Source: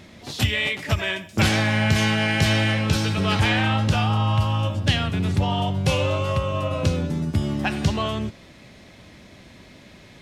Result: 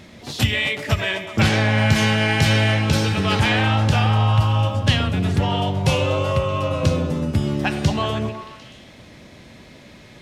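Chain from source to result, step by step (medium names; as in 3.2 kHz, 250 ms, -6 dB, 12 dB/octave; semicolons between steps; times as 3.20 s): 1.25–1.78 s: treble shelf 7.3 kHz -9 dB; repeats whose band climbs or falls 125 ms, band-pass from 410 Hz, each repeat 0.7 oct, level -4 dB; on a send at -21.5 dB: reverberation RT60 0.30 s, pre-delay 3 ms; on the sum: trim +2 dB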